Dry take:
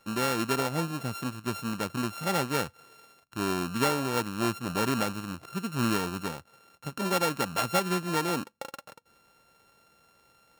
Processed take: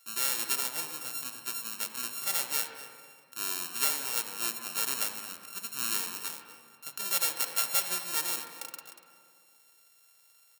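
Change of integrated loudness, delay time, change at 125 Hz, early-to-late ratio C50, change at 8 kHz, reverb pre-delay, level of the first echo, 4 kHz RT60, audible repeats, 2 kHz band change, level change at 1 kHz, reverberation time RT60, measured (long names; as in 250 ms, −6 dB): −0.5 dB, 242 ms, below −25 dB, 5.5 dB, +7.0 dB, 38 ms, −17.0 dB, 1.3 s, 1, −4.0 dB, −9.5 dB, 2.2 s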